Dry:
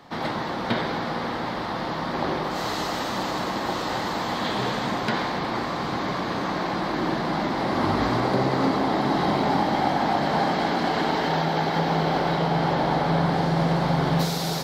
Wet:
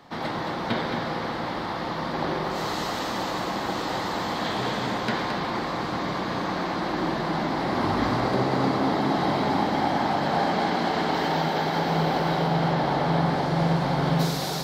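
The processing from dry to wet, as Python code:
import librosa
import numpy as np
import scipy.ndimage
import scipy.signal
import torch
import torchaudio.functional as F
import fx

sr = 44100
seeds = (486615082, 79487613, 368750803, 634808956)

y = fx.high_shelf(x, sr, hz=10000.0, db=7.5, at=(11.14, 12.47))
y = y + 10.0 ** (-6.5 / 20.0) * np.pad(y, (int(219 * sr / 1000.0), 0))[:len(y)]
y = F.gain(torch.from_numpy(y), -2.0).numpy()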